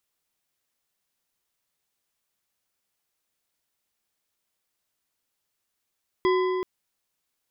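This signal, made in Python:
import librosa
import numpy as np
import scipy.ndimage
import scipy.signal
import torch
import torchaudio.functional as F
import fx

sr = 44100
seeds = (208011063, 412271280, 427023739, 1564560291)

y = fx.strike_metal(sr, length_s=0.38, level_db=-18.5, body='bar', hz=370.0, decay_s=3.02, tilt_db=6, modes=5)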